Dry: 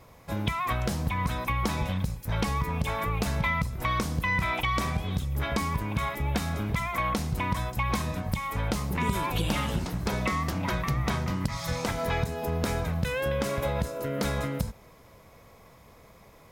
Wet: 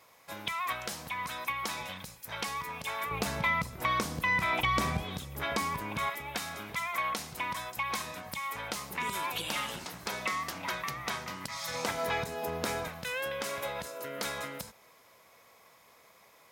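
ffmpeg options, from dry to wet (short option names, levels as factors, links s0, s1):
-af "asetnsamples=n=441:p=0,asendcmd='3.11 highpass f 330;4.53 highpass f 130;5.04 highpass f 460;6.1 highpass f 1200;11.74 highpass f 510;12.88 highpass f 1200',highpass=f=1400:p=1"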